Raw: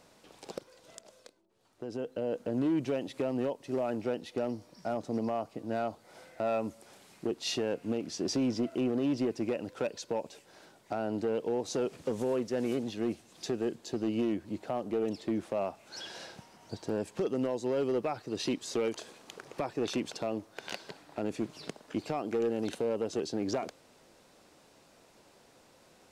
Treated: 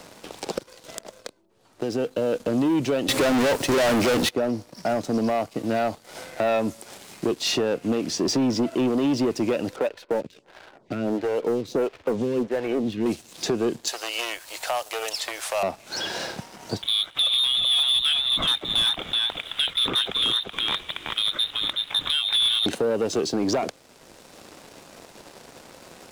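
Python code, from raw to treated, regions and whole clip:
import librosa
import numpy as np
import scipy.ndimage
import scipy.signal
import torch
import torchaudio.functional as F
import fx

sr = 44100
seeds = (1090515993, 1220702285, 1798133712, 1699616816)

y = fx.chain(x, sr, fx.high_shelf(hz=8400.0, db=6.0),
    fx.leveller(passes=5),
    fx.gate_hold(open_db=-26.0, close_db=-32.0, hold_ms=71.0, range_db=-21, attack_ms=1.4, release_ms=100.0), at=(3.08, 4.29))
y = fx.chain(y, sr, fx.lowpass(hz=2200.0, slope=12),
    fx.stagger_phaser(hz=1.5), at=(9.76, 13.06))
y = fx.chain(y, sr, fx.highpass(hz=600.0, slope=24),
    fx.tilt_eq(slope=4.5), at=(13.87, 15.63))
y = fx.chain(y, sr, fx.echo_single(ms=378, db=-5.0),
    fx.freq_invert(carrier_hz=3900), at=(16.82, 22.66))
y = fx.leveller(y, sr, passes=2)
y = fx.band_squash(y, sr, depth_pct=40)
y = y * 10.0 ** (3.5 / 20.0)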